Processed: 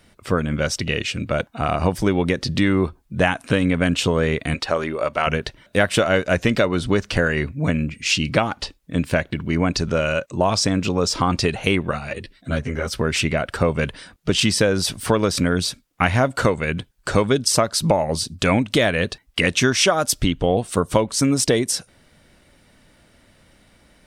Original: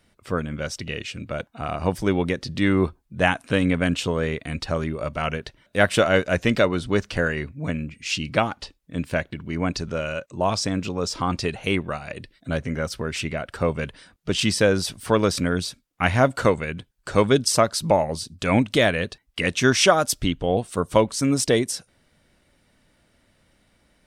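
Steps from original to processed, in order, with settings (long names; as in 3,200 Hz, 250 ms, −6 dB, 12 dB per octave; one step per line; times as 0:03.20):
0:04.54–0:05.27: bass and treble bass −15 dB, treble −4 dB
downward compressor 4 to 1, threshold −23 dBFS, peak gain reduction 11 dB
0:11.91–0:12.93: string-ensemble chorus
level +8 dB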